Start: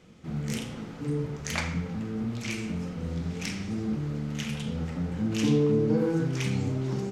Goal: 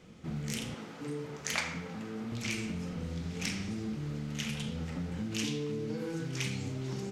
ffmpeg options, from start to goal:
-filter_complex "[0:a]asettb=1/sr,asplit=3[a][b][c];[a]atrim=end=0.744[d];[b]atrim=start=0.74:end=2.32,asetpts=PTS-STARTPTS,afade=t=in:d=0.004:c=qsin,afade=t=out:st=1.576:d=0.004:c=qsin,highpass=f=460:p=1[e];[c]atrim=start=2.316[f];[d][e]acrossfade=d=0.004:c1=hsin:c2=qsin[g];[g][f]acrossfade=d=0.004:c1=qsin:c2=hsin,acrossover=split=1900[h][i];[h]acompressor=threshold=-34dB:ratio=6[j];[j][i]amix=inputs=2:normalize=0"

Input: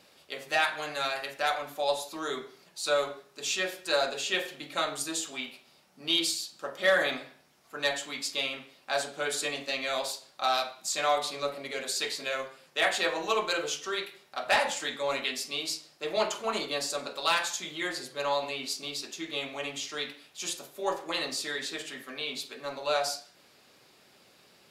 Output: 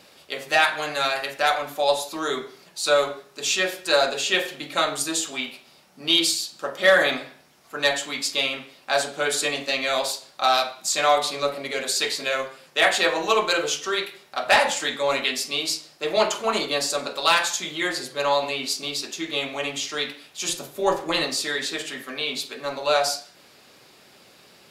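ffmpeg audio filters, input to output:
-filter_complex "[0:a]asettb=1/sr,asplit=3[a][b][c];[a]atrim=end=20.494[d];[b]atrim=start=20.49:end=21.25,asetpts=PTS-STARTPTS,afade=t=in:d=0.004:c=qsin,afade=t=out:st=0.756:d=0.004:c=qsin,lowshelf=f=210:g=11[e];[c]atrim=start=21.246[f];[d][e]acrossfade=d=0.004:c1=hsin:c2=qsin[g];[g][f]acrossfade=d=0.004:c1=qsin:c2=hsin,volume=7.5dB"

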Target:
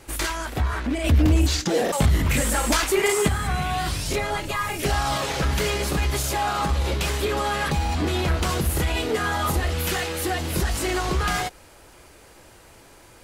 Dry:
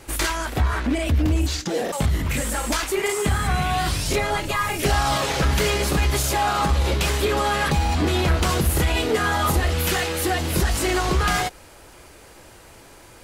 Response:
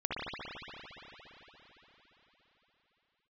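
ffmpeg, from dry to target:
-filter_complex "[0:a]asettb=1/sr,asplit=3[a][b][c];[a]atrim=end=1.044[d];[b]atrim=start=1.04:end=3.28,asetpts=PTS-STARTPTS,afade=t=in:d=0.004:c=qsin,afade=t=out:st=2.236:d=0.004:c=qsin,acontrast=46[e];[c]atrim=start=3.276[f];[d][e]acrossfade=d=0.004:c1=hsin:c2=qsin[g];[g][f]acrossfade=d=0.004:c1=qsin:c2=hsin,volume=-3dB"

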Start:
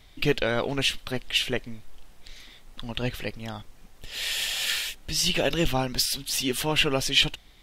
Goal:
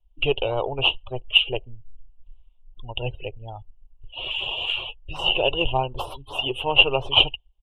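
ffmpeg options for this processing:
-filter_complex "[0:a]asplit=2[a][b];[b]acrusher=samples=14:mix=1:aa=0.000001:lfo=1:lforange=14:lforate=2.7,volume=-5dB[c];[a][c]amix=inputs=2:normalize=0,afftdn=nr=31:nf=-31,aeval=exprs='0.562*(cos(1*acos(clip(val(0)/0.562,-1,1)))-cos(1*PI/2))+0.0631*(cos(2*acos(clip(val(0)/0.562,-1,1)))-cos(2*PI/2))+0.0126*(cos(7*acos(clip(val(0)/0.562,-1,1)))-cos(7*PI/2))':c=same,firequalizer=gain_entry='entry(130,0);entry(190,-21);entry(380,0);entry(640,2);entry(940,6);entry(1800,-26);entry(2800,12);entry(4700,-29);entry(9300,-12)':delay=0.05:min_phase=1,volume=-1dB"

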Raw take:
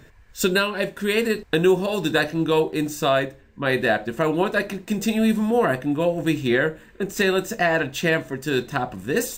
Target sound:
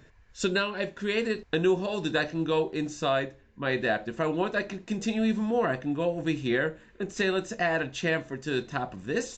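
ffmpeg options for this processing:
-af "aresample=16000,aresample=44100,volume=-6.5dB"

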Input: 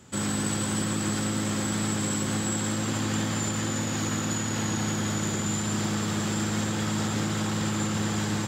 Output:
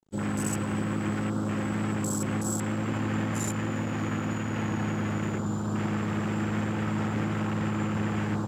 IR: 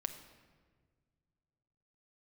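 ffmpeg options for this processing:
-af "afwtdn=0.0178,aeval=exprs='sgn(val(0))*max(abs(val(0))-0.00188,0)':c=same"

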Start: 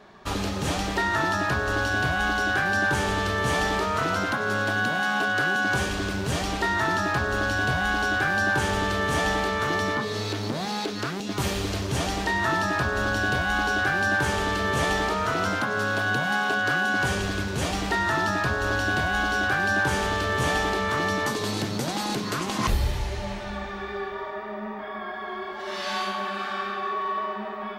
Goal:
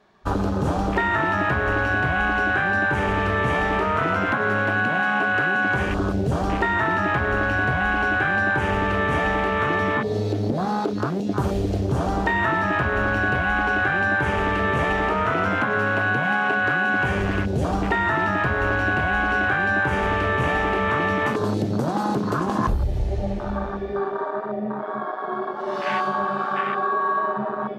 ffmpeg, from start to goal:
-af "afwtdn=0.0355,acompressor=threshold=-26dB:ratio=6,volume=8dB"

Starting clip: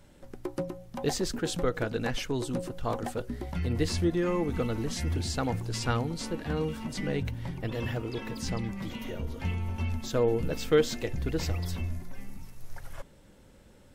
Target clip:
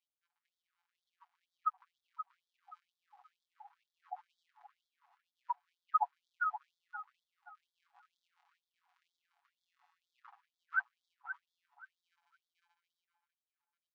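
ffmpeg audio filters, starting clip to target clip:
-filter_complex "[0:a]aemphasis=mode=reproduction:type=riaa,afftfilt=real='re*gte(hypot(re,im),0.158)':imag='im*gte(hypot(re,im),0.158)':win_size=1024:overlap=0.75,acompressor=threshold=-18dB:ratio=8,tiltshelf=f=1.1k:g=-9.5,bandreject=f=60:t=h:w=6,bandreject=f=120:t=h:w=6,bandreject=f=180:t=h:w=6,aecho=1:1:7.1:0.72,dynaudnorm=f=250:g=13:m=6dB,highpass=140,lowpass=6.7k,asplit=2[a][b];[b]adelay=527,lowpass=f=1k:p=1,volume=-5dB,asplit=2[c][d];[d]adelay=527,lowpass=f=1k:p=1,volume=0.42,asplit=2[e][f];[f]adelay=527,lowpass=f=1k:p=1,volume=0.42,asplit=2[g][h];[h]adelay=527,lowpass=f=1k:p=1,volume=0.42,asplit=2[i][j];[j]adelay=527,lowpass=f=1k:p=1,volume=0.42[k];[a][c][e][g][i][k]amix=inputs=6:normalize=0,afftfilt=real='re*gte(b*sr/1024,700*pow(3300/700,0.5+0.5*sin(2*PI*2.1*pts/sr)))':imag='im*gte(b*sr/1024,700*pow(3300/700,0.5+0.5*sin(2*PI*2.1*pts/sr)))':win_size=1024:overlap=0.75,volume=12dB"

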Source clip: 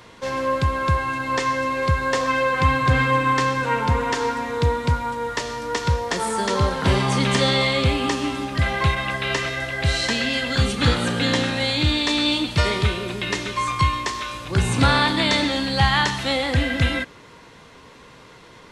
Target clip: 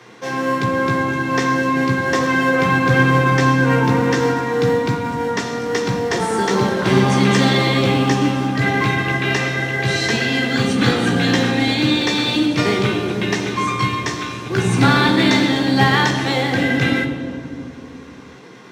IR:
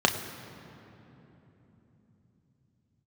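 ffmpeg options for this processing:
-filter_complex "[0:a]asplit=2[a][b];[b]acrusher=samples=36:mix=1:aa=0.000001,volume=-10dB[c];[a][c]amix=inputs=2:normalize=0,lowshelf=f=73:g=10.5[d];[1:a]atrim=start_sample=2205,asetrate=88200,aresample=44100[e];[d][e]afir=irnorm=-1:irlink=0,volume=-6.5dB"

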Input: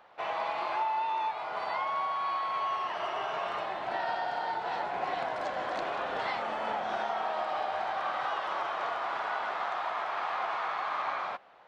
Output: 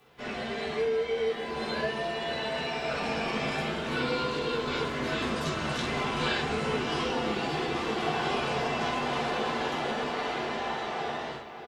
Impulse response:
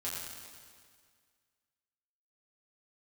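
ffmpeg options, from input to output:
-filter_complex "[0:a]dynaudnorm=f=200:g=17:m=4.5dB,asplit=2[a][b];[b]adelay=587,lowpass=f=4.7k:p=1,volume=-11dB,asplit=2[c][d];[d]adelay=587,lowpass=f=4.7k:p=1,volume=0.53,asplit=2[e][f];[f]adelay=587,lowpass=f=4.7k:p=1,volume=0.53,asplit=2[g][h];[h]adelay=587,lowpass=f=4.7k:p=1,volume=0.53,asplit=2[i][j];[j]adelay=587,lowpass=f=4.7k:p=1,volume=0.53,asplit=2[k][l];[l]adelay=587,lowpass=f=4.7k:p=1,volume=0.53[m];[a][c][e][g][i][k][m]amix=inputs=7:normalize=0,afreqshift=-430[n];[1:a]atrim=start_sample=2205,afade=t=out:st=0.17:d=0.01,atrim=end_sample=7938,asetrate=74970,aresample=44100[o];[n][o]afir=irnorm=-1:irlink=0,crystalizer=i=7:c=0"

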